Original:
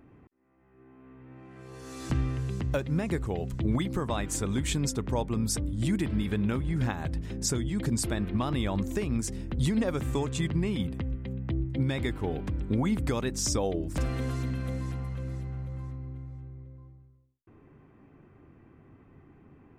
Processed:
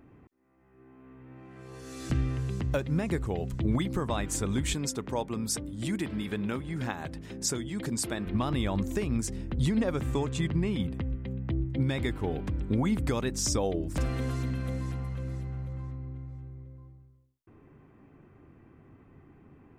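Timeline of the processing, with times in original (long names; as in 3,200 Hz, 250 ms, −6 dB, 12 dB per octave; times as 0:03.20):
0:01.80–0:02.31: parametric band 960 Hz −8.5 dB 0.43 octaves
0:04.74–0:08.26: high-pass filter 250 Hz 6 dB per octave
0:09.27–0:11.80: high-shelf EQ 5,700 Hz −5 dB
0:15.73–0:16.29: high-shelf EQ 8,700 Hz −11 dB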